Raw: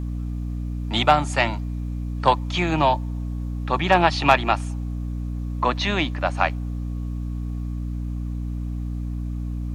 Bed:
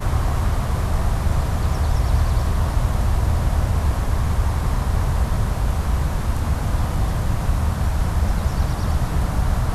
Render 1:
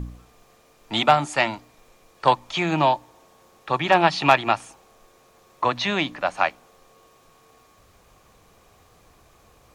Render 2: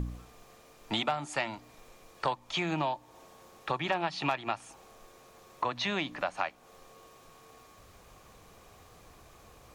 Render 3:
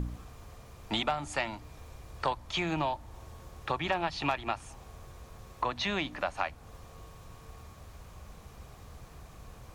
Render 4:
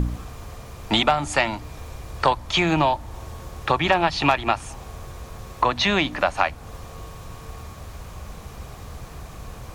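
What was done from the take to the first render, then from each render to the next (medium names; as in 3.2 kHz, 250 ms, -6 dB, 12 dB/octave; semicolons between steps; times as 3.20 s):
de-hum 60 Hz, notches 5
compression 4:1, threshold -30 dBFS, peak gain reduction 17 dB
add bed -30 dB
trim +11.5 dB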